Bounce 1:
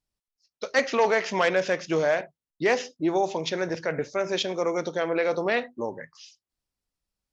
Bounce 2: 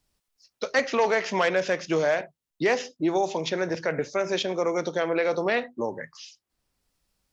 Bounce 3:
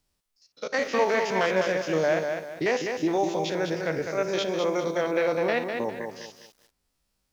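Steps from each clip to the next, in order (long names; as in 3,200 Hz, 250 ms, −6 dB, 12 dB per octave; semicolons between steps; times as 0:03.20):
multiband upward and downward compressor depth 40%
spectrum averaged block by block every 50 ms; feedback echo at a low word length 202 ms, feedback 35%, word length 9 bits, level −5.5 dB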